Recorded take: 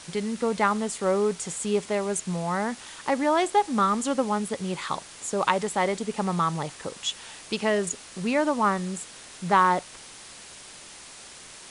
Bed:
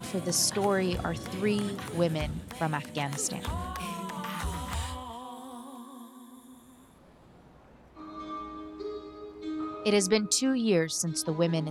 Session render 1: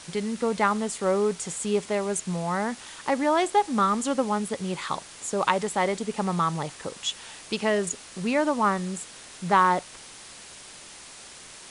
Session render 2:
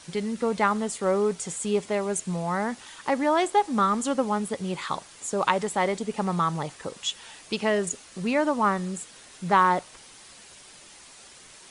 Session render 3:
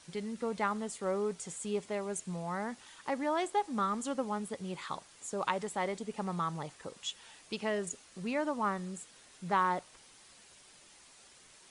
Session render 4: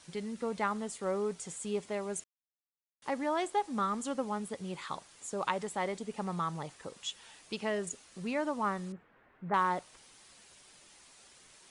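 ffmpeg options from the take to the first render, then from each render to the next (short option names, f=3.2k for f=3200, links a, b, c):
-af anull
-af "afftdn=nr=6:nf=-46"
-af "volume=-9.5dB"
-filter_complex "[0:a]asettb=1/sr,asplit=3[a][b][c];[a]atrim=end=8.924[d];[b]atrim=start=8.92:end=9.54,asetpts=PTS-STARTPTS,afade=t=in:d=0.004:c=qsin,afade=t=out:st=0.616:d=0.004:c=qsin,lowpass=f=1.9k:w=0.5412,lowpass=f=1.9k:w=1.3066[e];[c]atrim=start=9.536[f];[d][e]acrossfade=d=0.004:c1=hsin:c2=qsin[g];[g][f]acrossfade=d=0.004:c1=qsin:c2=hsin,asplit=3[h][i][j];[h]atrim=end=2.24,asetpts=PTS-STARTPTS,afade=t=out:st=2.236:d=0.004:c=hsin[k];[i]atrim=start=2.24:end=3.02,asetpts=PTS-STARTPTS,volume=0[l];[j]atrim=start=3.02,asetpts=PTS-STARTPTS,afade=t=in:d=0.004:c=hsin[m];[k][l][m]concat=n=3:v=0:a=1"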